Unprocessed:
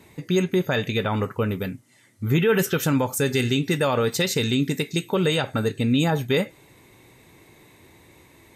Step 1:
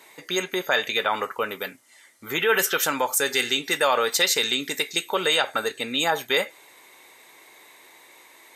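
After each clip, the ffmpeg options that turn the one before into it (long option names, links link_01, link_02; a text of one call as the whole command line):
ffmpeg -i in.wav -af "highpass=700,bandreject=frequency=2600:width=20,volume=5.5dB" out.wav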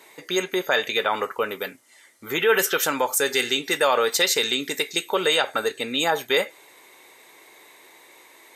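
ffmpeg -i in.wav -af "equalizer=frequency=410:width=1.5:gain=3.5" out.wav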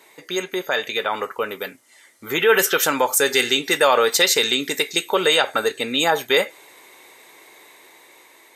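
ffmpeg -i in.wav -af "dynaudnorm=framelen=840:gausssize=5:maxgain=11.5dB,volume=-1dB" out.wav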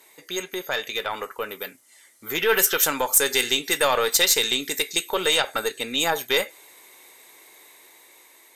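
ffmpeg -i in.wav -af "aeval=exprs='0.841*(cos(1*acos(clip(val(0)/0.841,-1,1)))-cos(1*PI/2))+0.0531*(cos(3*acos(clip(val(0)/0.841,-1,1)))-cos(3*PI/2))+0.0422*(cos(4*acos(clip(val(0)/0.841,-1,1)))-cos(4*PI/2))+0.00473*(cos(8*acos(clip(val(0)/0.841,-1,1)))-cos(8*PI/2))':channel_layout=same,aemphasis=mode=production:type=cd,volume=-4dB" out.wav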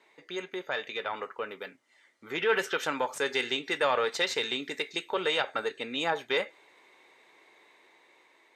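ffmpeg -i in.wav -af "highpass=120,lowpass=3000,volume=-5dB" out.wav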